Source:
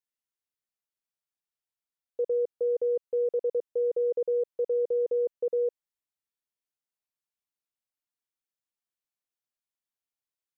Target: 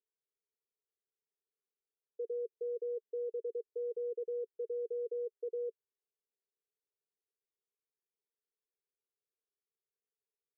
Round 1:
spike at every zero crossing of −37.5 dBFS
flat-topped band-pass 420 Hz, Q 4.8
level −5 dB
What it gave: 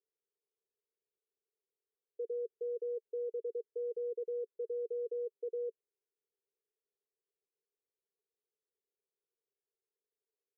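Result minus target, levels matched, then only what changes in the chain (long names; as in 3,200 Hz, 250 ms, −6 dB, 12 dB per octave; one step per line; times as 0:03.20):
spike at every zero crossing: distortion +6 dB
change: spike at every zero crossing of −44 dBFS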